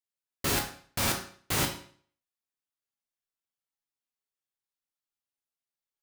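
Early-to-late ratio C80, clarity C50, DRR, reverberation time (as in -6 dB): 12.0 dB, 7.5 dB, 0.5 dB, 0.50 s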